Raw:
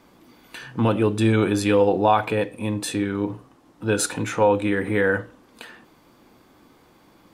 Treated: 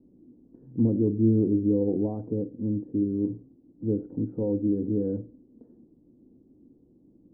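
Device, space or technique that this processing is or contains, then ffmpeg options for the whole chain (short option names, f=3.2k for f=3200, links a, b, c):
under water: -af "lowpass=f=400:w=0.5412,lowpass=f=400:w=1.3066,equalizer=f=260:t=o:w=0.56:g=5.5,volume=-3.5dB"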